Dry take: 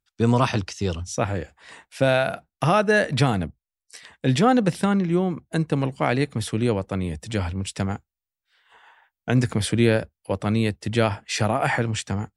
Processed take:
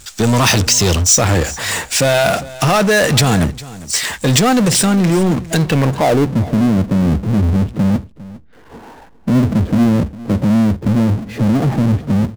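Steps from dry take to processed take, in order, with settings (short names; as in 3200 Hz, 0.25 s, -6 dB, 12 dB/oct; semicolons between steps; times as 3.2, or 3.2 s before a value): low-pass sweep 7500 Hz -> 240 Hz, 5.5–6.32; in parallel at +1 dB: negative-ratio compressor -25 dBFS; on the sum: power-law curve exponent 0.5; high shelf 4400 Hz +6 dB; on a send: echo 0.404 s -18.5 dB; on the sum: gain -3.5 dB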